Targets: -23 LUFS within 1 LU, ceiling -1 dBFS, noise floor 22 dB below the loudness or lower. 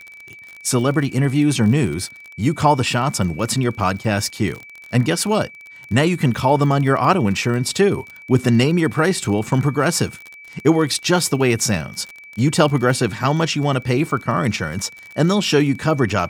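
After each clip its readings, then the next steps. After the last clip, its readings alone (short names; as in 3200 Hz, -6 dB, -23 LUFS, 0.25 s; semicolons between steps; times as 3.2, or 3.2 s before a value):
ticks 33/s; steady tone 2300 Hz; tone level -38 dBFS; loudness -18.5 LUFS; peak -1.5 dBFS; loudness target -23.0 LUFS
-> de-click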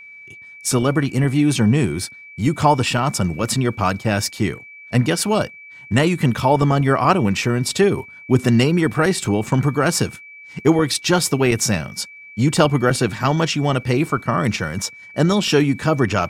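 ticks 0/s; steady tone 2300 Hz; tone level -38 dBFS
-> notch 2300 Hz, Q 30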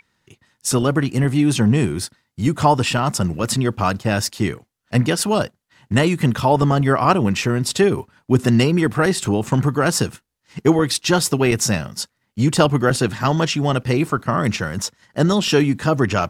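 steady tone none; loudness -19.0 LUFS; peak -1.5 dBFS; loudness target -23.0 LUFS
-> gain -4 dB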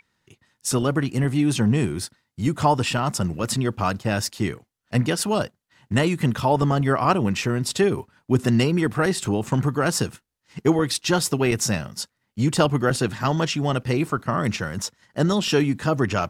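loudness -23.0 LUFS; peak -5.5 dBFS; noise floor -77 dBFS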